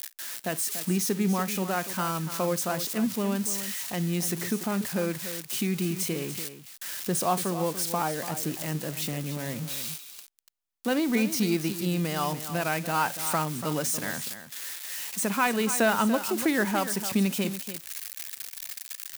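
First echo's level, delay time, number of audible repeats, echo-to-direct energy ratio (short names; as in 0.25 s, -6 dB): -19.5 dB, 50 ms, 2, -11.0 dB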